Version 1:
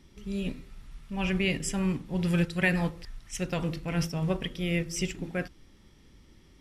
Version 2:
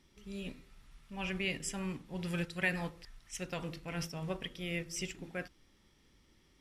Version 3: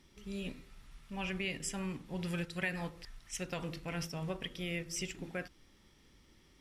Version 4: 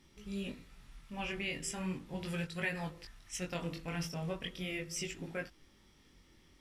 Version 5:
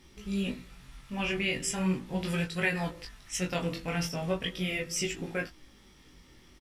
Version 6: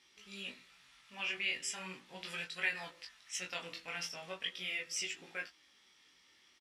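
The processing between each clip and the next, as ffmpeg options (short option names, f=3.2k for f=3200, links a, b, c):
-af "lowshelf=f=380:g=-7,volume=-5.5dB"
-af "acompressor=threshold=-40dB:ratio=2,volume=3dB"
-af "flanger=delay=18.5:depth=5.8:speed=0.38,volume=3dB"
-filter_complex "[0:a]asplit=2[a][b];[b]adelay=16,volume=-6.5dB[c];[a][c]amix=inputs=2:normalize=0,volume=6.5dB"
-af "bandpass=f=3.3k:t=q:w=0.6:csg=0,volume=-3dB"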